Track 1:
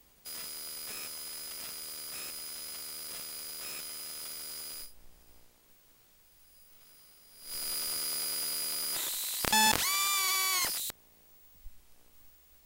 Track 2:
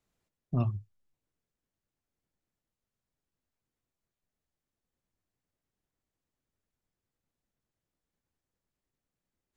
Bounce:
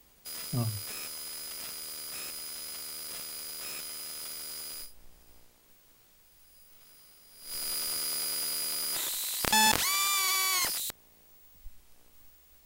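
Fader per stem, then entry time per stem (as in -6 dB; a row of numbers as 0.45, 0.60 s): +1.5, -3.0 dB; 0.00, 0.00 s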